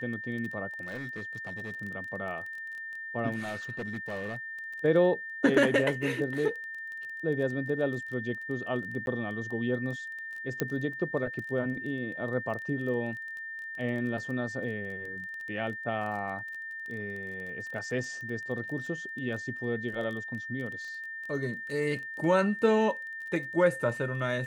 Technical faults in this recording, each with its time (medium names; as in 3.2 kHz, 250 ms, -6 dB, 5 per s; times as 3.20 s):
crackle 17 per s -37 dBFS
whine 1.8 kHz -37 dBFS
0.83–1.75 s: clipped -33.5 dBFS
3.39–4.37 s: clipped -31 dBFS
9.06–9.07 s: dropout
10.60 s: pop -13 dBFS